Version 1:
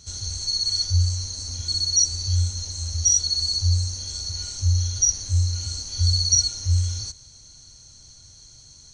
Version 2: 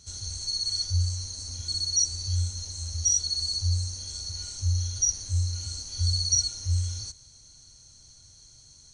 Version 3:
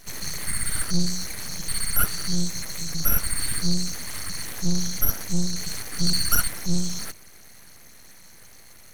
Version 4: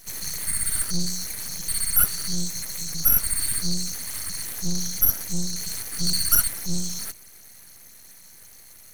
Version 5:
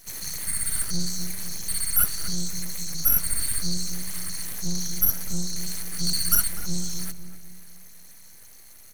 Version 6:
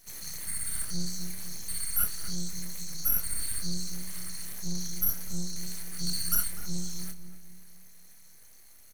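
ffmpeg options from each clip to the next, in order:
-af "equalizer=f=9.2k:t=o:w=0.31:g=8,volume=-5.5dB"
-af "aeval=exprs='abs(val(0))':c=same,volume=6.5dB"
-af "crystalizer=i=1.5:c=0,volume=-4.5dB"
-filter_complex "[0:a]asplit=2[a][b];[b]adelay=249,lowpass=f=810:p=1,volume=-6.5dB,asplit=2[c][d];[d]adelay=249,lowpass=f=810:p=1,volume=0.47,asplit=2[e][f];[f]adelay=249,lowpass=f=810:p=1,volume=0.47,asplit=2[g][h];[h]adelay=249,lowpass=f=810:p=1,volume=0.47,asplit=2[i][j];[j]adelay=249,lowpass=f=810:p=1,volume=0.47,asplit=2[k][l];[l]adelay=249,lowpass=f=810:p=1,volume=0.47[m];[a][c][e][g][i][k][m]amix=inputs=7:normalize=0,volume=-2dB"
-filter_complex "[0:a]asplit=2[a][b];[b]adelay=28,volume=-7.5dB[c];[a][c]amix=inputs=2:normalize=0,volume=-7.5dB"

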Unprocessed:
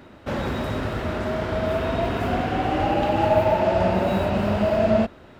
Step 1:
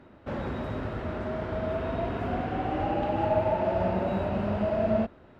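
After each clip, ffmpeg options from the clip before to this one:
-af "lowpass=f=1.8k:p=1,volume=-6dB"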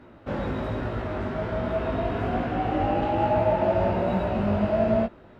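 -af "flanger=delay=16.5:depth=3.6:speed=1.2,volume=6.5dB"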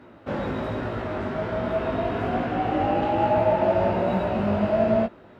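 -af "highpass=f=120:p=1,volume=2dB"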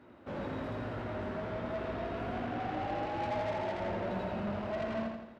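-af "asoftclip=type=tanh:threshold=-25dB,aecho=1:1:84|168|252|336|420|504:0.596|0.298|0.149|0.0745|0.0372|0.0186,volume=-9dB"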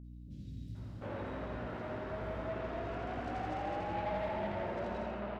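-filter_complex "[0:a]acrossover=split=210|4300[a][b][c];[c]adelay=40[d];[b]adelay=750[e];[a][e][d]amix=inputs=3:normalize=0,aeval=exprs='val(0)+0.00501*(sin(2*PI*60*n/s)+sin(2*PI*2*60*n/s)/2+sin(2*PI*3*60*n/s)/3+sin(2*PI*4*60*n/s)/4+sin(2*PI*5*60*n/s)/5)':c=same,volume=-2dB"

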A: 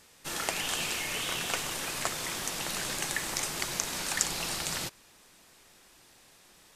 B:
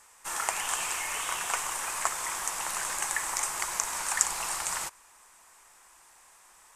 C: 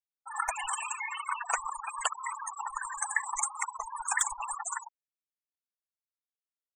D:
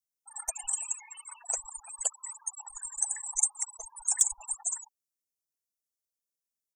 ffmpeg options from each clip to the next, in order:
-af "equalizer=f=125:t=o:w=1:g=-10,equalizer=f=250:t=o:w=1:g=-8,equalizer=f=500:t=o:w=1:g=-3,equalizer=f=1k:t=o:w=1:g=12,equalizer=f=2k:t=o:w=1:g=3,equalizer=f=4k:t=o:w=1:g=-7,equalizer=f=8k:t=o:w=1:g=10,volume=-3.5dB"
-af "aeval=exprs='(mod(5.31*val(0)+1,2)-1)/5.31':c=same,afftfilt=real='re*gte(hypot(re,im),0.0562)':imag='im*gte(hypot(re,im),0.0562)':win_size=1024:overlap=0.75,volume=4dB"
-af "firequalizer=gain_entry='entry(590,0);entry(1100,-24);entry(5600,6)':delay=0.05:min_phase=1"

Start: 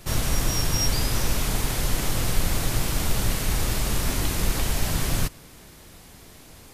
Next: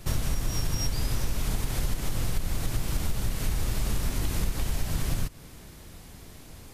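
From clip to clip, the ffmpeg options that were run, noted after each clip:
-af "lowshelf=f=220:g=6.5,acompressor=threshold=-20dB:ratio=6,volume=-2.5dB"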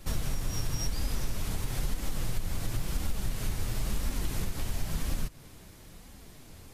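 -af "flanger=delay=3.6:depth=7.1:regen=-33:speed=0.98:shape=sinusoidal"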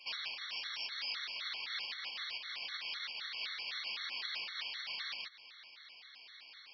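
-af "asuperpass=centerf=4200:order=4:qfactor=0.64,aresample=11025,aresample=44100,afftfilt=real='re*gt(sin(2*PI*3.9*pts/sr)*(1-2*mod(floor(b*sr/1024/1100),2)),0)':imag='im*gt(sin(2*PI*3.9*pts/sr)*(1-2*mod(floor(b*sr/1024/1100),2)),0)':win_size=1024:overlap=0.75,volume=10dB"

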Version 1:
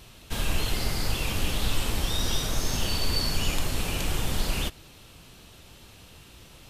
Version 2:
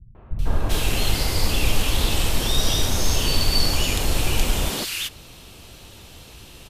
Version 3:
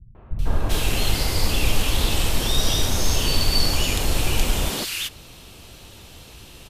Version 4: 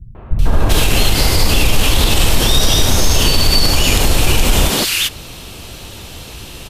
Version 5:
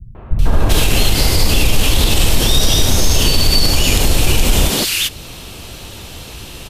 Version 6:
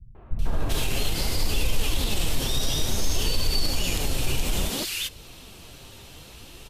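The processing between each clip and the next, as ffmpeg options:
-filter_complex "[0:a]acontrast=37,acrossover=split=170|1500[a][b][c];[b]adelay=150[d];[c]adelay=390[e];[a][d][e]amix=inputs=3:normalize=0,volume=1.5dB"
-af anull
-af "alimiter=level_in=12.5dB:limit=-1dB:release=50:level=0:latency=1,volume=-1dB"
-af "adynamicequalizer=threshold=0.0316:dfrequency=1200:dqfactor=0.74:tfrequency=1200:tqfactor=0.74:attack=5:release=100:ratio=0.375:range=2:mode=cutabove:tftype=bell"
-af "flanger=delay=1.9:depth=5.8:regen=63:speed=0.59:shape=sinusoidal,volume=-8.5dB"

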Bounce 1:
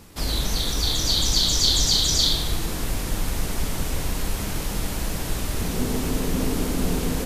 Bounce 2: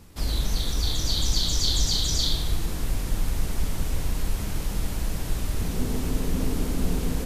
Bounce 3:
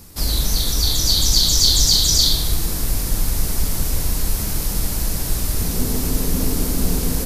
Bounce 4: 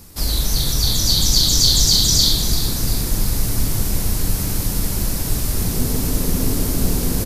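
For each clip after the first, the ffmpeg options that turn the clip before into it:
-af "lowshelf=f=150:g=7.5,volume=-6dB"
-af "aexciter=amount=2.7:drive=4.3:freq=4.3k,volume=5dB"
-filter_complex "[0:a]asplit=6[a][b][c][d][e][f];[b]adelay=342,afreqshift=87,volume=-11dB[g];[c]adelay=684,afreqshift=174,volume=-17.2dB[h];[d]adelay=1026,afreqshift=261,volume=-23.4dB[i];[e]adelay=1368,afreqshift=348,volume=-29.6dB[j];[f]adelay=1710,afreqshift=435,volume=-35.8dB[k];[a][g][h][i][j][k]amix=inputs=6:normalize=0"

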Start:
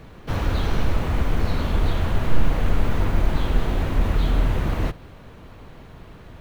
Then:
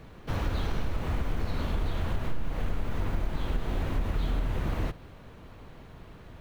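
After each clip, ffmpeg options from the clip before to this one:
-af "acompressor=threshold=-19dB:ratio=5,volume=-5dB"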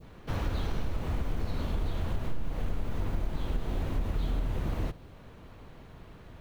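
-af "adynamicequalizer=threshold=0.00178:dfrequency=1700:dqfactor=0.71:tfrequency=1700:tqfactor=0.71:attack=5:release=100:ratio=0.375:range=2:mode=cutabove:tftype=bell,volume=-1.5dB"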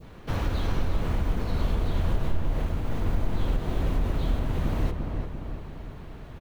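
-filter_complex "[0:a]asplit=2[a][b];[b]adelay=345,lowpass=f=1.9k:p=1,volume=-4.5dB,asplit=2[c][d];[d]adelay=345,lowpass=f=1.9k:p=1,volume=0.54,asplit=2[e][f];[f]adelay=345,lowpass=f=1.9k:p=1,volume=0.54,asplit=2[g][h];[h]adelay=345,lowpass=f=1.9k:p=1,volume=0.54,asplit=2[i][j];[j]adelay=345,lowpass=f=1.9k:p=1,volume=0.54,asplit=2[k][l];[l]adelay=345,lowpass=f=1.9k:p=1,volume=0.54,asplit=2[m][n];[n]adelay=345,lowpass=f=1.9k:p=1,volume=0.54[o];[a][c][e][g][i][k][m][o]amix=inputs=8:normalize=0,volume=4dB"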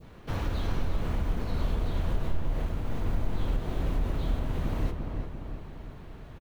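-filter_complex "[0:a]asplit=2[a][b];[b]adelay=29,volume=-14dB[c];[a][c]amix=inputs=2:normalize=0,volume=-3.5dB"

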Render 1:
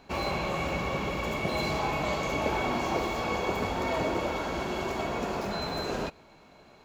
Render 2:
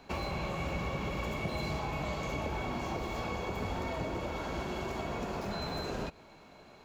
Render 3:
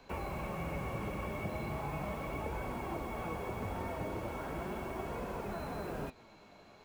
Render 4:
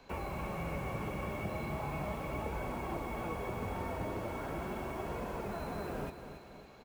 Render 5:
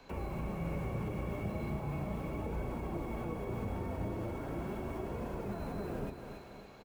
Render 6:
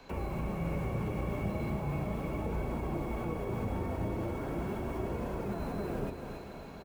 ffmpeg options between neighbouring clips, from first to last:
-filter_complex "[0:a]acrossover=split=170[a][b];[b]acompressor=threshold=-35dB:ratio=6[c];[a][c]amix=inputs=2:normalize=0"
-filter_complex "[0:a]flanger=delay=1.9:depth=8.2:regen=64:speed=0.38:shape=sinusoidal,acrossover=split=270|2900[a][b][c];[c]aeval=exprs='(mod(750*val(0)+1,2)-1)/750':c=same[d];[a][b][d]amix=inputs=3:normalize=0,volume=1.5dB"
-af "aecho=1:1:279|558|837|1116|1395|1674:0.316|0.164|0.0855|0.0445|0.0231|0.012"
-filter_complex "[0:a]acrossover=split=500[a][b];[a]asplit=2[c][d];[d]adelay=35,volume=-4.5dB[e];[c][e]amix=inputs=2:normalize=0[f];[b]alimiter=level_in=16.5dB:limit=-24dB:level=0:latency=1:release=344,volume=-16.5dB[g];[f][g]amix=inputs=2:normalize=0,volume=1dB"
-af "aecho=1:1:996:0.266,volume=3dB"

